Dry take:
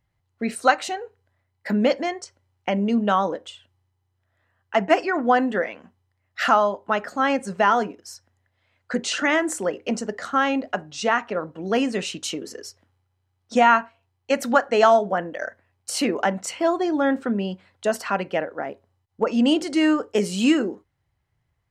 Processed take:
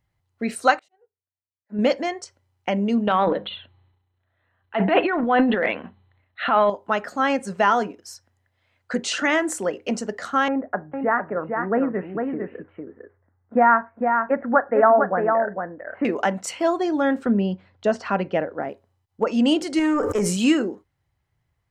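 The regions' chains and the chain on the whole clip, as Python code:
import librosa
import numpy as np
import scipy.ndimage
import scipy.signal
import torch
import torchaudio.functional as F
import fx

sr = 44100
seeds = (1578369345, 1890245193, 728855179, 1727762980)

y = fx.chain(x, sr, fx.high_shelf(hz=2100.0, db=-11.0),
    fx.auto_swell(attack_ms=212.0),
    fx.upward_expand(threshold_db=-45.0, expansion=2.5), at=(0.79, 1.79))
y = fx.chain(y, sr, fx.brickwall_lowpass(high_hz=4300.0),
    fx.hum_notches(base_hz=50, count=4),
    fx.transient(attack_db=-6, sustain_db=11), at=(3.07, 6.7))
y = fx.chain(y, sr, fx.steep_lowpass(hz=1900.0, slope=48),
    fx.echo_single(ms=453, db=-5.0), at=(10.48, 16.05))
y = fx.chain(y, sr, fx.lowpass(hz=6600.0, slope=24),
    fx.tilt_eq(slope=-2.0), at=(17.26, 18.69))
y = fx.chain(y, sr, fx.band_shelf(hz=3600.0, db=-10.5, octaves=1.0),
    fx.tube_stage(drive_db=14.0, bias=0.2),
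    fx.sustainer(db_per_s=24.0), at=(19.79, 20.37))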